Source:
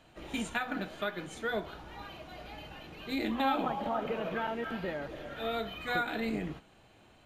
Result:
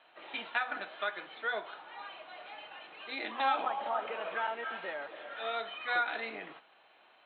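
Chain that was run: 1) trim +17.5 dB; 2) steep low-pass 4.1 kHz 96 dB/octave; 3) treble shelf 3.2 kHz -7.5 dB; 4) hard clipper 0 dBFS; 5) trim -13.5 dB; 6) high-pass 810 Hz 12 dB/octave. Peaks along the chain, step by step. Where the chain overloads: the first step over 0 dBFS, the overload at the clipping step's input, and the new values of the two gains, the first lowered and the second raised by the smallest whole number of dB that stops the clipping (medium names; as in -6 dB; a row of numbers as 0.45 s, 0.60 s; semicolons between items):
-2.0 dBFS, -1.0 dBFS, -2.0 dBFS, -2.0 dBFS, -15.5 dBFS, -18.0 dBFS; nothing clips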